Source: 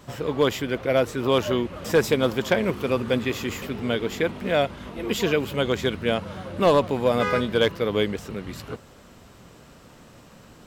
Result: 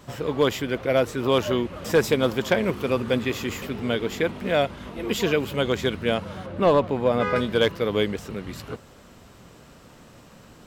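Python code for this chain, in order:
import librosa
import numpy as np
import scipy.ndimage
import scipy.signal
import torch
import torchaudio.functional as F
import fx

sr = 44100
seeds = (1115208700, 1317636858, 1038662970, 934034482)

y = fx.high_shelf(x, sr, hz=4100.0, db=-12.0, at=(6.46, 7.36))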